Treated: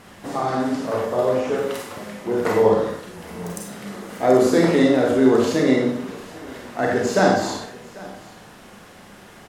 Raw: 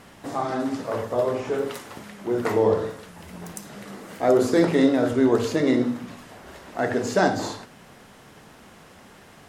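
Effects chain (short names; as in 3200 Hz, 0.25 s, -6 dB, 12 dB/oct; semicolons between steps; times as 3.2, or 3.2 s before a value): echo 0.795 s -21 dB; Schroeder reverb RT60 0.49 s, combs from 31 ms, DRR 0.5 dB; gain +1.5 dB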